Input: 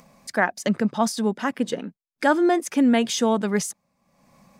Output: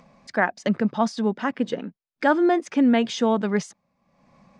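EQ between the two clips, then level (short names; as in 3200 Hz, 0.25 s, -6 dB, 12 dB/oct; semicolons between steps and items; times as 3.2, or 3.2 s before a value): Gaussian blur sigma 1.6 samples; 0.0 dB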